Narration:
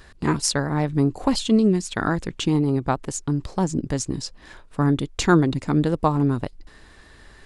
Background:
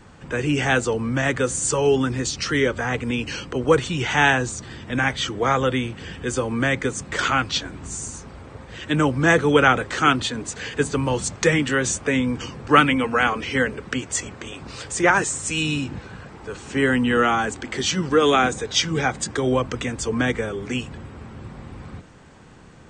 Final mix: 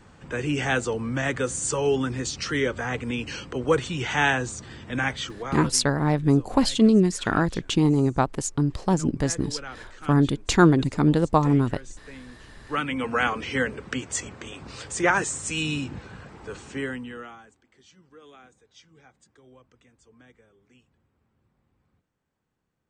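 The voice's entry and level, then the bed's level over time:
5.30 s, +0.5 dB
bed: 5.13 s -4.5 dB
5.88 s -23 dB
12.43 s -23 dB
13.09 s -4 dB
16.59 s -4 dB
17.64 s -33 dB

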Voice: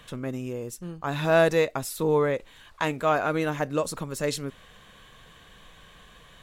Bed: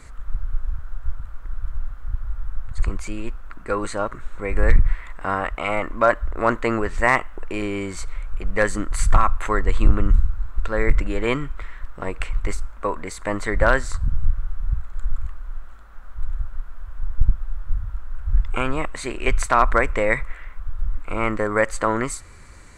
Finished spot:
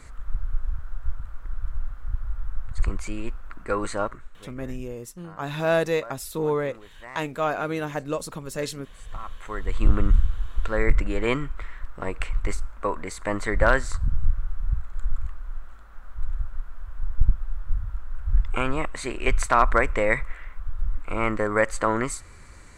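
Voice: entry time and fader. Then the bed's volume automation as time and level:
4.35 s, -2.0 dB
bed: 4.05 s -2 dB
4.56 s -24.5 dB
9 s -24.5 dB
9.93 s -2 dB

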